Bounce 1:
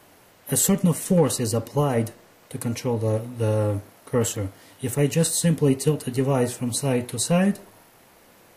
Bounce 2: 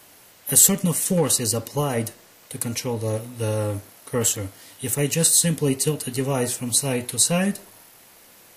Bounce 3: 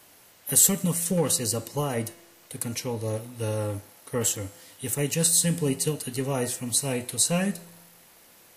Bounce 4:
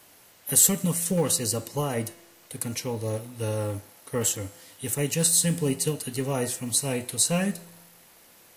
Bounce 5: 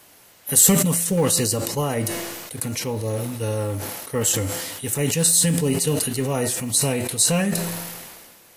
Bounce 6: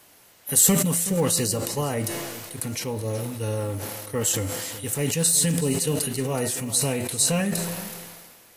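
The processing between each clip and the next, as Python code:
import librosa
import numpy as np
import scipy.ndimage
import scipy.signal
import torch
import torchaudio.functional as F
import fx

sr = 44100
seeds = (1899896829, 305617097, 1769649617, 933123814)

y1 = fx.high_shelf(x, sr, hz=2300.0, db=11.0)
y1 = F.gain(torch.from_numpy(y1), -2.5).numpy()
y2 = fx.comb_fb(y1, sr, f0_hz=170.0, decay_s=1.2, harmonics='all', damping=0.0, mix_pct=50)
y2 = F.gain(torch.from_numpy(y2), 1.5).numpy()
y3 = fx.quant_float(y2, sr, bits=4)
y4 = fx.sustainer(y3, sr, db_per_s=33.0)
y4 = F.gain(torch.from_numpy(y4), 3.5).numpy()
y5 = y4 + 10.0 ** (-15.0 / 20.0) * np.pad(y4, (int(374 * sr / 1000.0), 0))[:len(y4)]
y5 = F.gain(torch.from_numpy(y5), -3.0).numpy()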